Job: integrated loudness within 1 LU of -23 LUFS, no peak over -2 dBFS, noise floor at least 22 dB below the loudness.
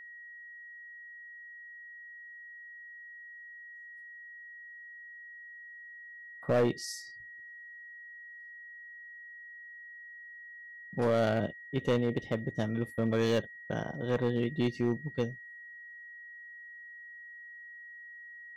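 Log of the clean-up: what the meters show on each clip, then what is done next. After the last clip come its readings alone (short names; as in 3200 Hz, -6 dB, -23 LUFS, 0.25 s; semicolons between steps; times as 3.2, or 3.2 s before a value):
clipped 0.6%; flat tops at -21.5 dBFS; steady tone 1900 Hz; tone level -46 dBFS; loudness -32.0 LUFS; peak -21.5 dBFS; loudness target -23.0 LUFS
-> clip repair -21.5 dBFS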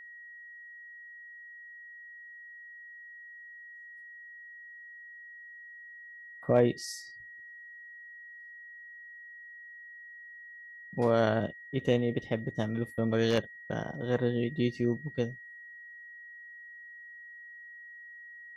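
clipped 0.0%; steady tone 1900 Hz; tone level -46 dBFS
-> notch 1900 Hz, Q 30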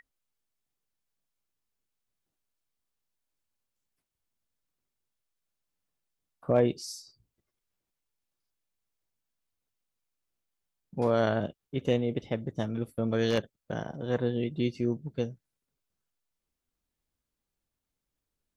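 steady tone none; loudness -30.5 LUFS; peak -12.5 dBFS; loudness target -23.0 LUFS
-> gain +7.5 dB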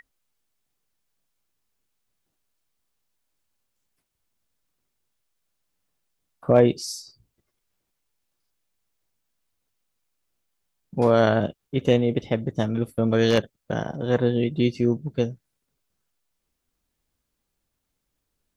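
loudness -23.0 LUFS; peak -5.0 dBFS; noise floor -79 dBFS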